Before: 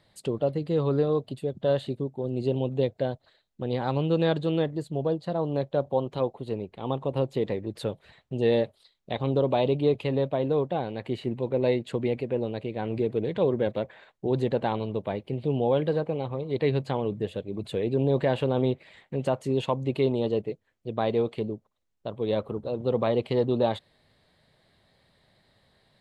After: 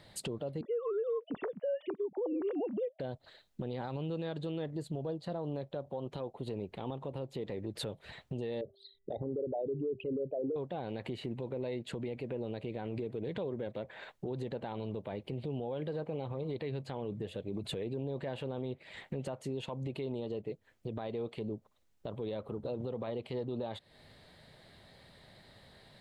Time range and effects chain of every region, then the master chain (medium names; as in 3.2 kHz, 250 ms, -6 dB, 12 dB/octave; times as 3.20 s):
0.61–3.00 s: formants replaced by sine waves + low-pass 2.4 kHz + compression 2.5:1, threshold -26 dBFS
8.61–10.56 s: resonances exaggerated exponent 3 + de-hum 394.5 Hz, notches 5
whole clip: band-stop 1.1 kHz, Q 22; compression 10:1, threshold -37 dBFS; peak limiter -35 dBFS; trim +6.5 dB